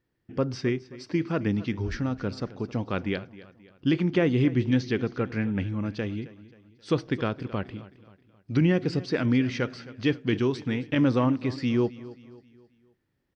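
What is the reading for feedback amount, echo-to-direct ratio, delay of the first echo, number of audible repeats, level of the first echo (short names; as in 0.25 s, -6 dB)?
44%, -17.0 dB, 0.266 s, 3, -18.0 dB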